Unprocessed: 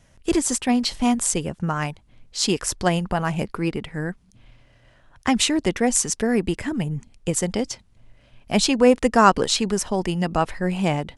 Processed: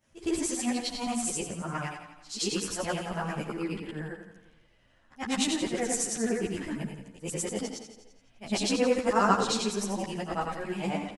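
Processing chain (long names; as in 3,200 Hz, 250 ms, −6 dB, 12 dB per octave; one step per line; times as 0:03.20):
every overlapping window played backwards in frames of 231 ms
low-shelf EQ 79 Hz −7 dB
on a send: repeating echo 85 ms, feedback 59%, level −9 dB
on the sum: string-ensemble chorus
level −2.5 dB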